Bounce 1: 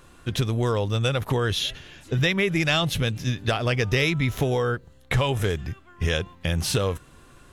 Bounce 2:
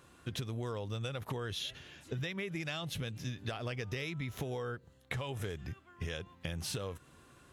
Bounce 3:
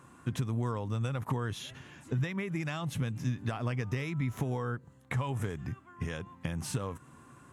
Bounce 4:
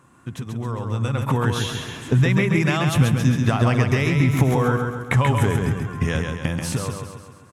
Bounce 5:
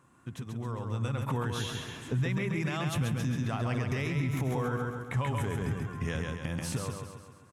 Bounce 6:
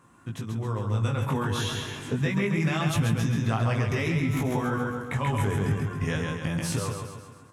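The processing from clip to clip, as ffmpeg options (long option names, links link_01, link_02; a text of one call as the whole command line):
ffmpeg -i in.wav -af "highpass=70,acompressor=threshold=-28dB:ratio=6,volume=-7.5dB" out.wav
ffmpeg -i in.wav -af "equalizer=frequency=125:width_type=o:width=1:gain=10,equalizer=frequency=250:width_type=o:width=1:gain=10,equalizer=frequency=1000:width_type=o:width=1:gain=11,equalizer=frequency=2000:width_type=o:width=1:gain=4,equalizer=frequency=4000:width_type=o:width=1:gain=-5,equalizer=frequency=8000:width_type=o:width=1:gain=8,volume=-4dB" out.wav
ffmpeg -i in.wav -filter_complex "[0:a]dynaudnorm=framelen=210:gausssize=11:maxgain=13dB,asplit=2[link_01][link_02];[link_02]aecho=0:1:135|270|405|540|675|810|945:0.596|0.304|0.155|0.079|0.0403|0.0206|0.0105[link_03];[link_01][link_03]amix=inputs=2:normalize=0,volume=1dB" out.wav
ffmpeg -i in.wav -af "alimiter=limit=-14dB:level=0:latency=1:release=72,volume=-8.5dB" out.wav
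ffmpeg -i in.wav -af "flanger=delay=18:depth=2.4:speed=0.28,volume=8.5dB" out.wav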